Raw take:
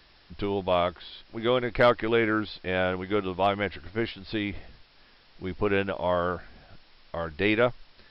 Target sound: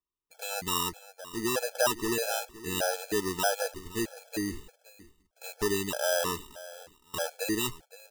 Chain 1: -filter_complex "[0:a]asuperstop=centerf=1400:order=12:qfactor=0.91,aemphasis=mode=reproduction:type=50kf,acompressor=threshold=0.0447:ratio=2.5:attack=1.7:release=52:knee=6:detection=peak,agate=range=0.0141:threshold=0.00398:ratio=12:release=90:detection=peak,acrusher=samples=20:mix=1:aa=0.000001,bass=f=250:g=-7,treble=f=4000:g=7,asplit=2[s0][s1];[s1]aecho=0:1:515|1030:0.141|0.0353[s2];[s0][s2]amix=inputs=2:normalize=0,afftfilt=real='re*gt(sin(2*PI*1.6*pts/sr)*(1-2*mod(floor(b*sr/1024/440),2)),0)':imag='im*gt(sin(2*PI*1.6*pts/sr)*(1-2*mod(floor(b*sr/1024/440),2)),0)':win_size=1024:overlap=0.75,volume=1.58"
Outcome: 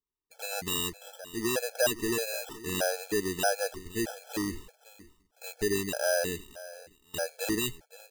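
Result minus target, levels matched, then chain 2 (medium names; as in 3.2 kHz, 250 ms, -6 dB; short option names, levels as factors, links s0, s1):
1 kHz band -4.0 dB
-filter_complex "[0:a]asuperstop=centerf=3000:order=12:qfactor=0.91,aemphasis=mode=reproduction:type=50kf,acompressor=threshold=0.0447:ratio=2.5:attack=1.7:release=52:knee=6:detection=peak,agate=range=0.0141:threshold=0.00398:ratio=12:release=90:detection=peak,acrusher=samples=20:mix=1:aa=0.000001,bass=f=250:g=-7,treble=f=4000:g=7,asplit=2[s0][s1];[s1]aecho=0:1:515|1030:0.141|0.0353[s2];[s0][s2]amix=inputs=2:normalize=0,afftfilt=real='re*gt(sin(2*PI*1.6*pts/sr)*(1-2*mod(floor(b*sr/1024/440),2)),0)':imag='im*gt(sin(2*PI*1.6*pts/sr)*(1-2*mod(floor(b*sr/1024/440),2)),0)':win_size=1024:overlap=0.75,volume=1.58"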